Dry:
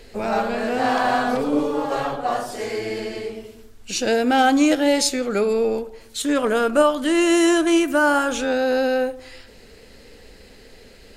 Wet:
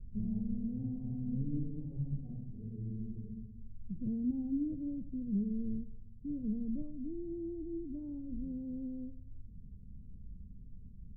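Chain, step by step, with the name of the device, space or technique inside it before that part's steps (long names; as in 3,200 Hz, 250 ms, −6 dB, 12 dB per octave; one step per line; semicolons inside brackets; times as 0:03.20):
the neighbour's flat through the wall (low-pass filter 160 Hz 24 dB per octave; parametric band 180 Hz +5.5 dB 1 octave)
level +1 dB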